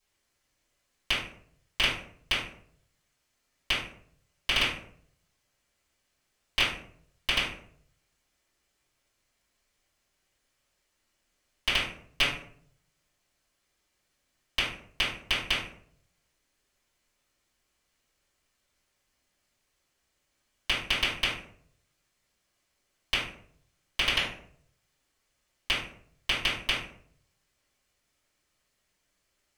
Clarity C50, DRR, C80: 3.0 dB, −13.0 dB, 8.5 dB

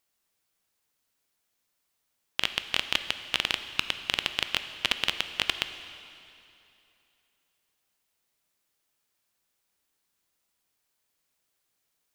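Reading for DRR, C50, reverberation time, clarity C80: 9.0 dB, 10.0 dB, 2.8 s, 11.0 dB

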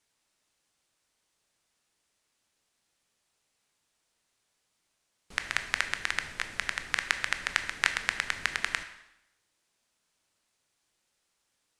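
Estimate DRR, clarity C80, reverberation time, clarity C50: 8.0 dB, 13.0 dB, 0.85 s, 11.0 dB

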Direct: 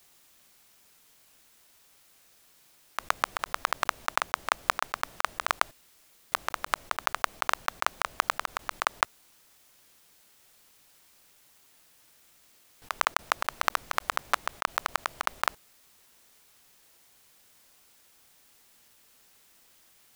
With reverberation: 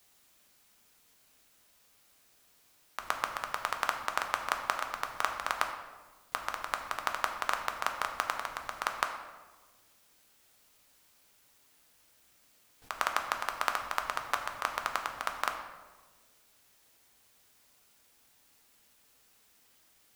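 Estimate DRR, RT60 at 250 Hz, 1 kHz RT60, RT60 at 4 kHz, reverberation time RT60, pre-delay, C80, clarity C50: 4.0 dB, 1.7 s, 1.3 s, 0.80 s, 1.4 s, 4 ms, 9.0 dB, 7.5 dB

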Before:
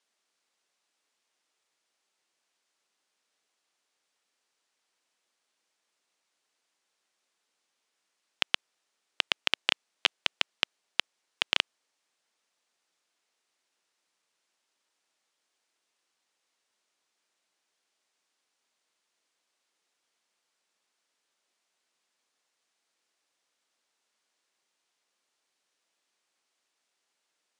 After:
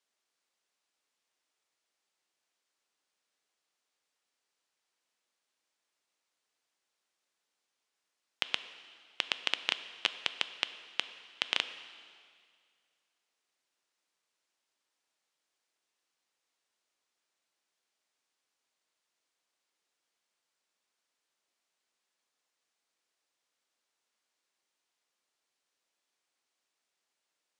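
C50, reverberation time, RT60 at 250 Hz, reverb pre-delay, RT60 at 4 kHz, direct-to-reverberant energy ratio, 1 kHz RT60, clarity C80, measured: 12.5 dB, 2.1 s, 2.1 s, 5 ms, 2.0 s, 11.0 dB, 2.1 s, 13.0 dB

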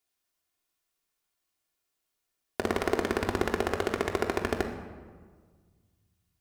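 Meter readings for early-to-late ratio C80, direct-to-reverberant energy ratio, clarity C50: 9.0 dB, 1.5 dB, 7.0 dB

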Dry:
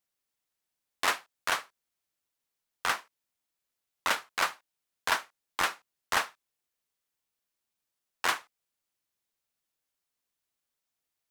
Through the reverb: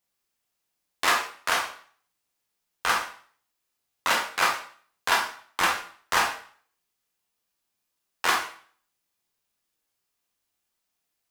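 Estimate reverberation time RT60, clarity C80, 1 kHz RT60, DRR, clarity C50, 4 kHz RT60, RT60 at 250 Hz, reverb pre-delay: 0.50 s, 10.5 dB, 0.50 s, −0.5 dB, 6.5 dB, 0.45 s, 0.50 s, 7 ms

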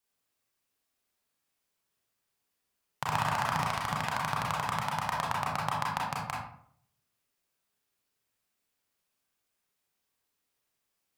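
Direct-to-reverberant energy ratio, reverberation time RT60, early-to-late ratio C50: −4.0 dB, 0.65 s, 1.5 dB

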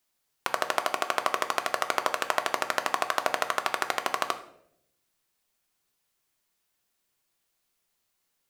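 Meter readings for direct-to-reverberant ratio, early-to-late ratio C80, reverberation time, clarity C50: 7.5 dB, 15.0 dB, 0.70 s, 12.5 dB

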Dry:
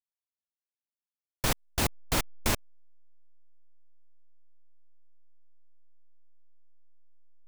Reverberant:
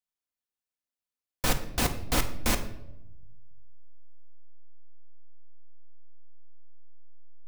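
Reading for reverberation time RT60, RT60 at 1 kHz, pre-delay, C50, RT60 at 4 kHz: 0.90 s, 0.75 s, 4 ms, 11.5 dB, 0.60 s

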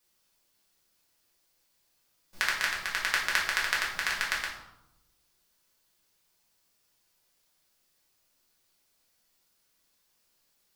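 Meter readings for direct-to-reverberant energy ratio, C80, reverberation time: −5.0 dB, 7.5 dB, 0.85 s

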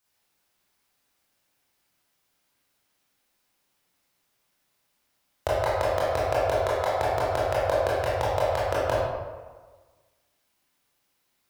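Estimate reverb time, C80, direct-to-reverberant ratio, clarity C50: 1.4 s, 0.5 dB, −8.5 dB, −2.5 dB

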